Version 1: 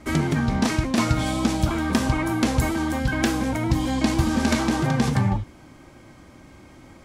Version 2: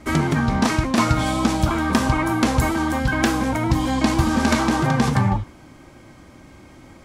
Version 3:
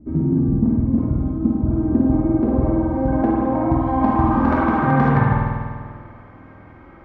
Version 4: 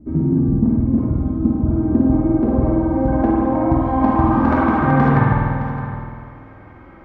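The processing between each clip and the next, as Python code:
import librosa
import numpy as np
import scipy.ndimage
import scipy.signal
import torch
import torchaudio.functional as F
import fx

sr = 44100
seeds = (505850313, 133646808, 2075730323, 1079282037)

y1 = fx.dynamic_eq(x, sr, hz=1100.0, q=1.3, threshold_db=-44.0, ratio=4.0, max_db=5)
y1 = F.gain(torch.from_numpy(y1), 2.0).numpy()
y2 = fx.rev_spring(y1, sr, rt60_s=1.8, pass_ms=(49,), chirp_ms=30, drr_db=-1.5)
y2 = fx.filter_sweep_lowpass(y2, sr, from_hz=260.0, to_hz=1500.0, start_s=1.23, end_s=5.19, q=1.5)
y2 = F.gain(torch.from_numpy(y2), -2.5).numpy()
y3 = y2 + 10.0 ** (-13.0 / 20.0) * np.pad(y2, (int(615 * sr / 1000.0), 0))[:len(y2)]
y3 = F.gain(torch.from_numpy(y3), 1.5).numpy()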